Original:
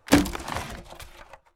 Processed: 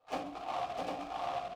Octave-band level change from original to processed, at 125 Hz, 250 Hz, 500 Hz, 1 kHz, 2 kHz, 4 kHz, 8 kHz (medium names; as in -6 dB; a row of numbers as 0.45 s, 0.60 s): -22.0 dB, -21.0 dB, -7.5 dB, -2.5 dB, -16.0 dB, -14.0 dB, -23.0 dB